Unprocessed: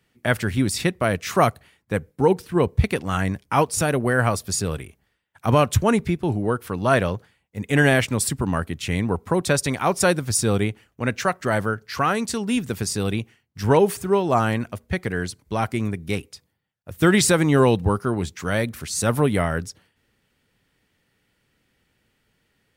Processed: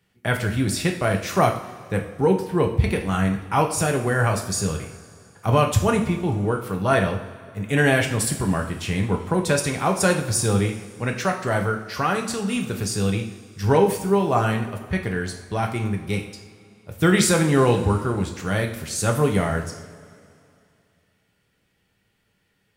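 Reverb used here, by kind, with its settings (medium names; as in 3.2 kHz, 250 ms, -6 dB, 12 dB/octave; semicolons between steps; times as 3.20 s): two-slope reverb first 0.53 s, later 2.6 s, from -16 dB, DRR 2 dB; trim -2.5 dB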